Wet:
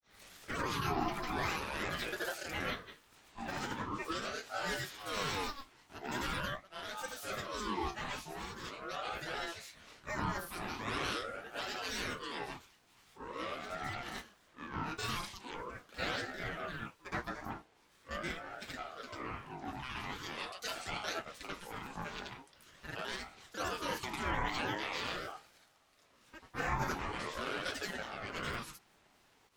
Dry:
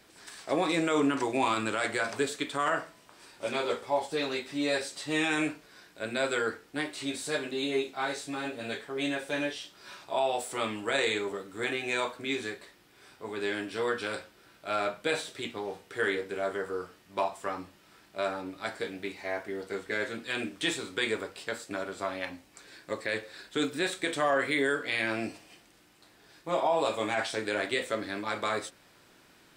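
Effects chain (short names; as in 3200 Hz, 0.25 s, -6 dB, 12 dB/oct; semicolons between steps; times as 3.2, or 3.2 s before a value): grains 0.257 s, grains 25/s, pitch spread up and down by 12 st; ring modulator with a swept carrier 780 Hz, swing 35%, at 0.43 Hz; gain +1 dB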